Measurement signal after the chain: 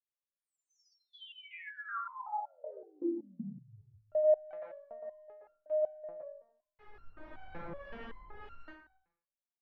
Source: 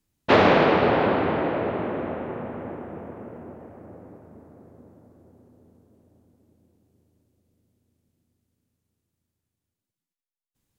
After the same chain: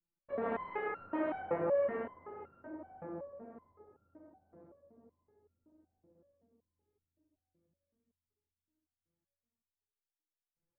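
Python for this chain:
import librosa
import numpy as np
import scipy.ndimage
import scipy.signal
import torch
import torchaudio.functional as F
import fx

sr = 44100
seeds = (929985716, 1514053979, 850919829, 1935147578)

y = scipy.signal.sosfilt(scipy.signal.butter(2, 3400.0, 'lowpass', fs=sr, output='sos'), x)
y = fx.hum_notches(y, sr, base_hz=60, count=5)
y = fx.dynamic_eq(y, sr, hz=1900.0, q=1.1, threshold_db=-41.0, ratio=4.0, max_db=6)
y = fx.rider(y, sr, range_db=3, speed_s=0.5)
y = 10.0 ** (-8.0 / 20.0) * np.tanh(y / 10.0 ** (-8.0 / 20.0))
y = fx.harmonic_tremolo(y, sr, hz=3.0, depth_pct=50, crossover_hz=580.0)
y = fx.filter_lfo_lowpass(y, sr, shape='sine', hz=1.8, low_hz=830.0, high_hz=2000.0, q=0.84)
y = fx.doubler(y, sr, ms=20.0, db=-12.5)
y = fx.echo_thinned(y, sr, ms=71, feedback_pct=54, hz=450.0, wet_db=-19.5)
y = fx.rev_plate(y, sr, seeds[0], rt60_s=0.63, hf_ratio=0.65, predelay_ms=105, drr_db=-1.5)
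y = fx.resonator_held(y, sr, hz=5.3, low_hz=170.0, high_hz=1400.0)
y = F.gain(torch.from_numpy(y), -1.5).numpy()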